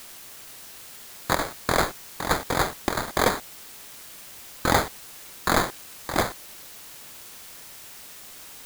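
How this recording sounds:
aliases and images of a low sample rate 2,800 Hz, jitter 0%
chopped level 1.3 Hz, depth 60%, duty 75%
a quantiser's noise floor 8 bits, dither triangular

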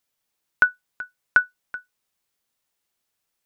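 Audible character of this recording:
background noise floor −79 dBFS
spectral slope +0.5 dB per octave

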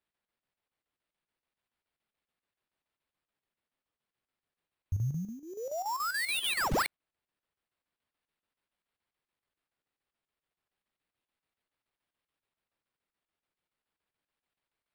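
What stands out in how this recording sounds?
phaser sweep stages 2, 0.32 Hz, lowest notch 290–3,200 Hz
aliases and images of a low sample rate 6,400 Hz, jitter 0%
chopped level 7 Hz, depth 60%, duty 75%

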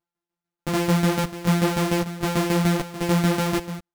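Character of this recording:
a buzz of ramps at a fixed pitch in blocks of 256 samples
tremolo saw down 6.8 Hz, depth 65%
a shimmering, thickened sound

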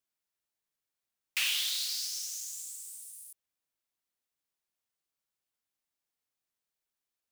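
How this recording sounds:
background noise floor −89 dBFS
spectral slope +3.5 dB per octave

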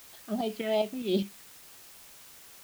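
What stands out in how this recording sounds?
phaser sweep stages 4, 2.8 Hz, lowest notch 800–1,700 Hz
tremolo saw up 4.9 Hz, depth 55%
a quantiser's noise floor 10 bits, dither triangular

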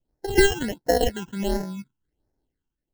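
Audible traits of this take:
tremolo triangle 0.99 Hz, depth 65%
aliases and images of a low sample rate 1,200 Hz, jitter 0%
phaser sweep stages 8, 1.4 Hz, lowest notch 570–3,100 Hz

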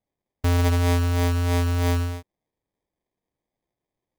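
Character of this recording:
aliases and images of a low sample rate 1,400 Hz, jitter 0%

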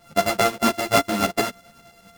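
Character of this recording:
a buzz of ramps at a fixed pitch in blocks of 64 samples
tremolo saw up 10 Hz, depth 60%
a shimmering, thickened sound

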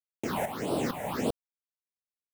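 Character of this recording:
a quantiser's noise floor 6 bits, dither none
tremolo saw up 2.2 Hz, depth 70%
phaser sweep stages 6, 1.7 Hz, lowest notch 310–1,900 Hz

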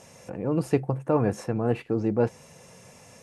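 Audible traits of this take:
background noise floor −52 dBFS
spectral slope −7.0 dB per octave

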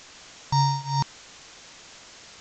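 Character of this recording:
a buzz of ramps at a fixed pitch in blocks of 8 samples
tremolo triangle 2.1 Hz, depth 95%
a quantiser's noise floor 8 bits, dither triangular
mu-law

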